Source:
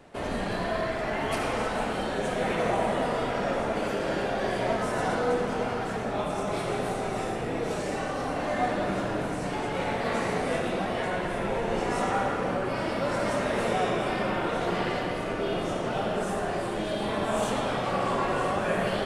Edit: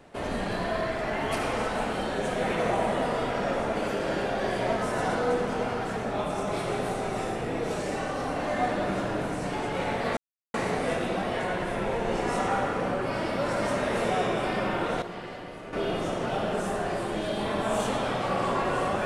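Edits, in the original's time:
10.17 insert silence 0.37 s
14.65–15.36 gain -10 dB

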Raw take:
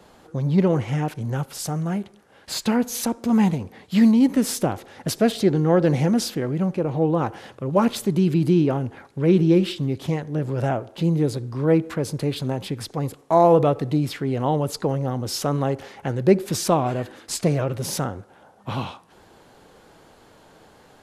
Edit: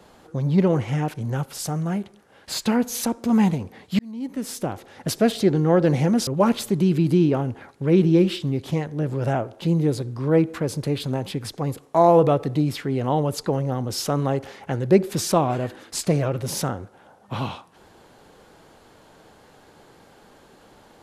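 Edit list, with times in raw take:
3.99–5.12 fade in
6.27–7.63 cut

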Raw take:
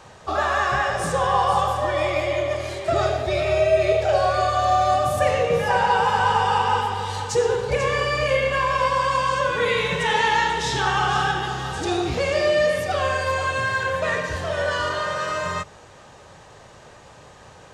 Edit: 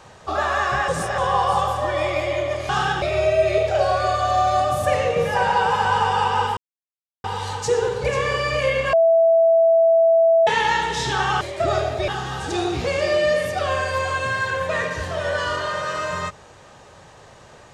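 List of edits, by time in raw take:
0.88–1.18 reverse
2.69–3.36 swap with 11.08–11.41
6.91 insert silence 0.67 s
8.6–10.14 bleep 660 Hz -11.5 dBFS

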